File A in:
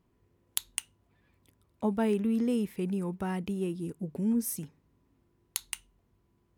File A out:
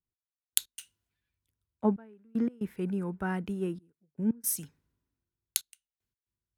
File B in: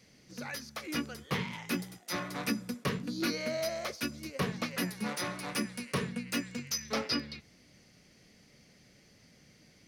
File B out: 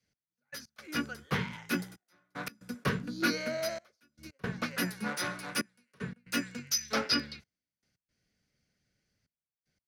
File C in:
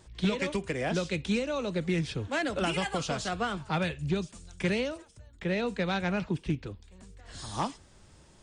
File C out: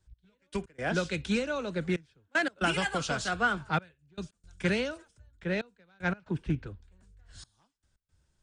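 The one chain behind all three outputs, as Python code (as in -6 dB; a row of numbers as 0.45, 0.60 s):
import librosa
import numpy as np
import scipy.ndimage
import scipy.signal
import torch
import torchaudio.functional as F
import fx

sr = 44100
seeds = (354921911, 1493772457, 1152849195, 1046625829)

y = fx.peak_eq(x, sr, hz=1500.0, db=9.5, octaves=0.29)
y = fx.step_gate(y, sr, bpm=115, pattern='x...x.xxxxxxxx', floor_db=-24.0, edge_ms=4.5)
y = fx.band_widen(y, sr, depth_pct=70)
y = F.gain(torch.from_numpy(y), -1.0).numpy()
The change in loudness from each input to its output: -0.5, +1.5, 0.0 LU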